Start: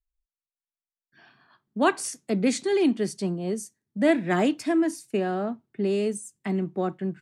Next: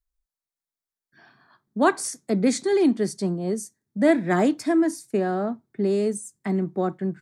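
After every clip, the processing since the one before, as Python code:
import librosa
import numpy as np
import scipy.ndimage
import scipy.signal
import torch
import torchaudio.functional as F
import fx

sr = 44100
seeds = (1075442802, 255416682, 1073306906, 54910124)

y = fx.peak_eq(x, sr, hz=2800.0, db=-11.0, octaves=0.44)
y = y * librosa.db_to_amplitude(2.5)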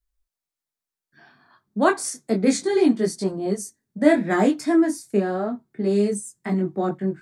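y = fx.detune_double(x, sr, cents=10)
y = y * librosa.db_to_amplitude(5.5)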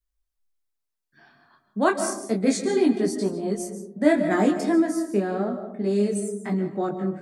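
y = fx.rev_freeverb(x, sr, rt60_s=0.86, hf_ratio=0.25, predelay_ms=105, drr_db=9.0)
y = y * librosa.db_to_amplitude(-2.5)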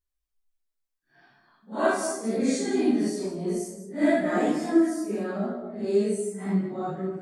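y = fx.phase_scramble(x, sr, seeds[0], window_ms=200)
y = fx.chorus_voices(y, sr, voices=2, hz=0.42, base_ms=15, depth_ms=2.7, mix_pct=40)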